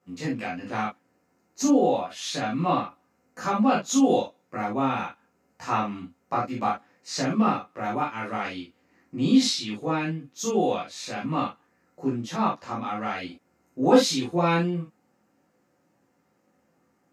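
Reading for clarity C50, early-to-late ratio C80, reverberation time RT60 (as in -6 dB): 4.5 dB, 22.0 dB, not exponential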